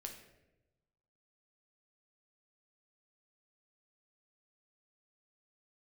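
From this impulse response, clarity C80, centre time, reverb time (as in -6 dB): 9.5 dB, 24 ms, 1.0 s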